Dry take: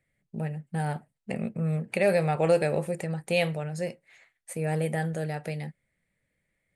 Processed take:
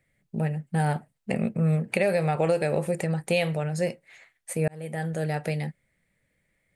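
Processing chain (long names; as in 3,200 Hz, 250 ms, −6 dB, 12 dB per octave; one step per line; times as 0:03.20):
0:01.74–0:03.71: downward compressor 6 to 1, threshold −25 dBFS, peak gain reduction 8 dB
0:04.68–0:05.37: fade in
level +5 dB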